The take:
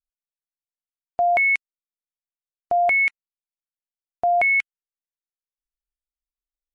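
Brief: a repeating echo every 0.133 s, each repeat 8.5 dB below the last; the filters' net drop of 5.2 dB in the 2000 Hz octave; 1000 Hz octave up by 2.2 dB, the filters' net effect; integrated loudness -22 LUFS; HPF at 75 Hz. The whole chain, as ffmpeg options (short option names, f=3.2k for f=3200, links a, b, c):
-af "highpass=75,equalizer=f=1k:t=o:g=5.5,equalizer=f=2k:t=o:g=-6.5,aecho=1:1:133|266|399|532:0.376|0.143|0.0543|0.0206,volume=-2dB"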